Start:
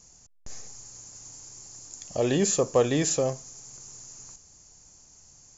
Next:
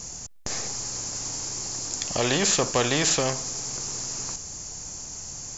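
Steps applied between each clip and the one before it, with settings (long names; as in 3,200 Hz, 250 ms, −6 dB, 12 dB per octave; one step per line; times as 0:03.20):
every bin compressed towards the loudest bin 2 to 1
level +2 dB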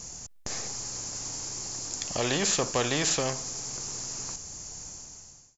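fade-out on the ending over 0.75 s
level −4 dB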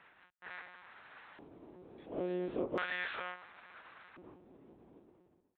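every bin's largest magnitude spread in time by 60 ms
one-pitch LPC vocoder at 8 kHz 180 Hz
auto-filter band-pass square 0.36 Hz 350–1,600 Hz
level −3 dB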